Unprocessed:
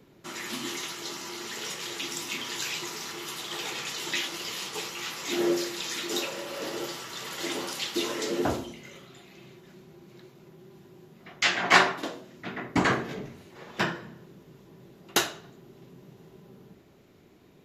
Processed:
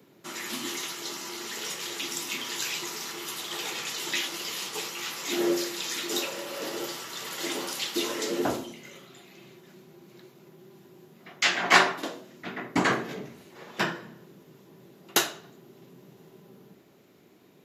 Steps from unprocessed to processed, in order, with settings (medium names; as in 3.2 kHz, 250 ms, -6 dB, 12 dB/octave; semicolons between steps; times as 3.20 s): high-pass 150 Hz 12 dB/octave; treble shelf 9.7 kHz +7 dB